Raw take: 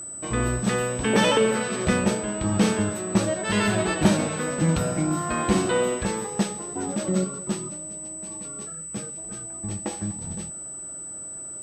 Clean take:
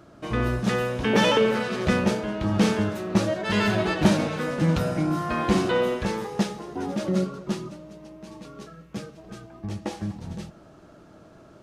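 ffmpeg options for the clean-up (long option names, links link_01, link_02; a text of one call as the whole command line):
ffmpeg -i in.wav -af "bandreject=frequency=8000:width=30" out.wav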